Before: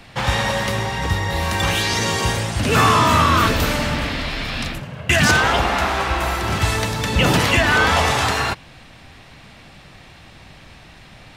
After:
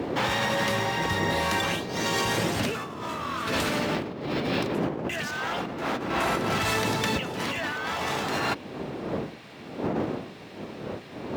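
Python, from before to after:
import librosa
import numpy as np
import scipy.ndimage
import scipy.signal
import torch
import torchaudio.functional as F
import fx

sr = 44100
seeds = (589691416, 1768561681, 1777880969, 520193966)

y = fx.dmg_wind(x, sr, seeds[0], corner_hz=400.0, level_db=-19.0)
y = scipy.signal.sosfilt(scipy.signal.butter(2, 160.0, 'highpass', fs=sr, output='sos'), y)
y = fx.over_compress(y, sr, threshold_db=-22.0, ratio=-1.0)
y = np.interp(np.arange(len(y)), np.arange(len(y))[::2], y[::2])
y = y * 10.0 ** (-6.5 / 20.0)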